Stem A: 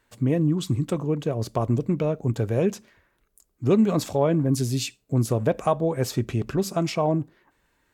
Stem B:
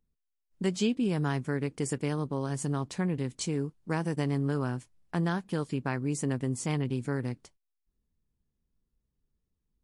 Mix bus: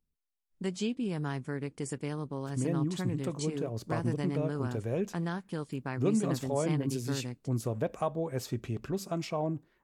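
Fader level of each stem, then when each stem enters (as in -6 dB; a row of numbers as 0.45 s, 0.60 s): -9.5 dB, -5.0 dB; 2.35 s, 0.00 s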